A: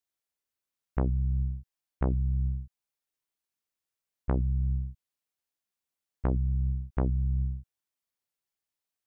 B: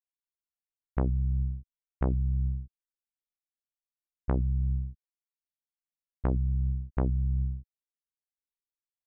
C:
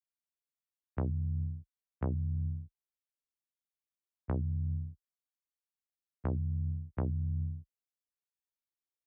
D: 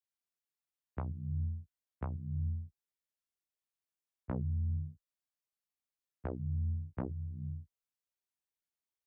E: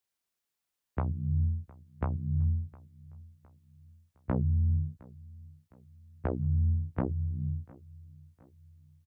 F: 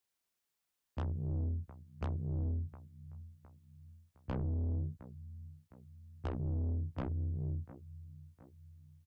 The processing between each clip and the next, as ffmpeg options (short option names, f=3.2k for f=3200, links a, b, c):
-af "anlmdn=0.0158"
-af "afreqshift=19,volume=-6dB"
-af "flanger=delay=16:depth=7:speed=0.97,volume=1dB"
-af "aecho=1:1:711|1422|2133:0.075|0.036|0.0173,volume=7.5dB"
-af "asoftclip=type=tanh:threshold=-32.5dB"